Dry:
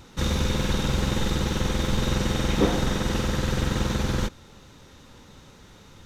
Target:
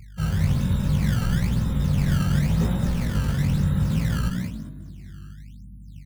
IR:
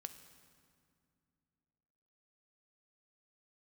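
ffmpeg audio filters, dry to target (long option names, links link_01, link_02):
-filter_complex "[0:a]afftfilt=real='re*gte(hypot(re,im),0.0282)':imag='im*gte(hypot(re,im),0.0282)':win_size=1024:overlap=0.75,afreqshift=16,aeval=exprs='val(0)+0.00708*(sin(2*PI*50*n/s)+sin(2*PI*2*50*n/s)/2+sin(2*PI*3*50*n/s)/3+sin(2*PI*4*50*n/s)/4+sin(2*PI*5*50*n/s)/5)':channel_layout=same,lowpass=7300,lowshelf=frequency=210:width_type=q:width=3:gain=8.5,asplit=6[link_01][link_02][link_03][link_04][link_05][link_06];[link_02]adelay=206,afreqshift=38,volume=-5.5dB[link_07];[link_03]adelay=412,afreqshift=76,volume=-13.9dB[link_08];[link_04]adelay=618,afreqshift=114,volume=-22.3dB[link_09];[link_05]adelay=824,afreqshift=152,volume=-30.7dB[link_10];[link_06]adelay=1030,afreqshift=190,volume=-39.1dB[link_11];[link_01][link_07][link_08][link_09][link_10][link_11]amix=inputs=6:normalize=0,acrusher=samples=17:mix=1:aa=0.000001:lfo=1:lforange=27.2:lforate=1,flanger=delay=16.5:depth=5.4:speed=0.7,volume=-5.5dB"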